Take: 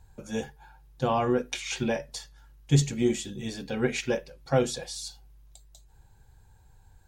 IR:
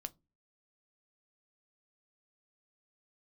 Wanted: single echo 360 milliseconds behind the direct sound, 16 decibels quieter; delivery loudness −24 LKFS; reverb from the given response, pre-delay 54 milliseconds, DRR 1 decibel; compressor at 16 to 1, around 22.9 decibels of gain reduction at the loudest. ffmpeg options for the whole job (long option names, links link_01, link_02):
-filter_complex "[0:a]acompressor=threshold=-39dB:ratio=16,aecho=1:1:360:0.158,asplit=2[link_01][link_02];[1:a]atrim=start_sample=2205,adelay=54[link_03];[link_02][link_03]afir=irnorm=-1:irlink=0,volume=2.5dB[link_04];[link_01][link_04]amix=inputs=2:normalize=0,volume=17.5dB"